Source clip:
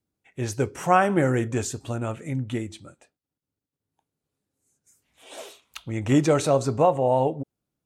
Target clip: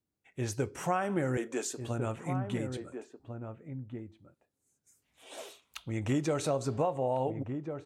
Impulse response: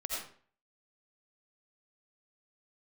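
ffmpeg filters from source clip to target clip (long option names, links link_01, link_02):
-filter_complex "[0:a]asettb=1/sr,asplit=3[link_01][link_02][link_03];[link_01]atrim=end=1.374[link_04];[link_02]atrim=start=1.37:end=1.8,asetpts=PTS-STARTPTS,afade=type=in:duration=0.004:curve=qsin,afade=type=out:start_time=0.426:duration=0.004:curve=qsin,highpass=frequency=270:width=0.5412,highpass=frequency=270:width=1.3066[link_05];[link_03]atrim=start=1.796[link_06];[link_04][link_05]acrossfade=duration=0.004:curve1=hsin:curve2=qsin[link_07];[link_07][link_06]acrossfade=duration=0.004:curve1=qsin:curve2=hsin,acompressor=threshold=-22dB:ratio=4,asplit=2[link_08][link_09];[link_09]adelay=1399,volume=-7dB,highshelf=frequency=4000:gain=-31.5[link_10];[link_08][link_10]amix=inputs=2:normalize=0,volume=-5dB"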